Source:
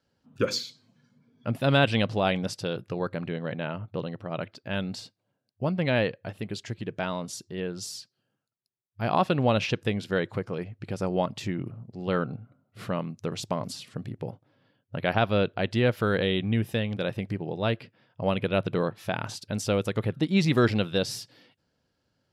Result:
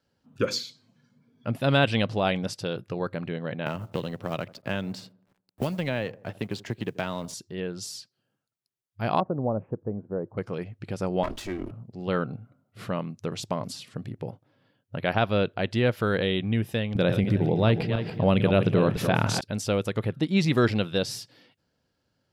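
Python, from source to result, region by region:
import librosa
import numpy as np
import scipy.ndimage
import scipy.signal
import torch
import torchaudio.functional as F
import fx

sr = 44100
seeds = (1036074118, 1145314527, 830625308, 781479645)

y = fx.chain(x, sr, fx.law_mismatch(coded='A'),
    fx.echo_wet_lowpass(ms=81, feedback_pct=35, hz=1100.0, wet_db=-20.5),
    fx.band_squash(depth_pct=100), at=(3.66, 7.34))
y = fx.chain(y, sr, fx.bessel_lowpass(hz=630.0, order=6),
    fx.low_shelf(hz=320.0, db=-5.0), at=(9.2, 10.38))
y = fx.chain(y, sr, fx.lower_of_two(delay_ms=3.1),
    fx.doubler(ms=22.0, db=-13.5),
    fx.sustainer(db_per_s=96.0), at=(11.23, 11.71))
y = fx.chain(y, sr, fx.reverse_delay_fb(ms=144, feedback_pct=48, wet_db=-11),
    fx.low_shelf(hz=410.0, db=6.5),
    fx.env_flatten(amount_pct=50), at=(16.95, 19.41))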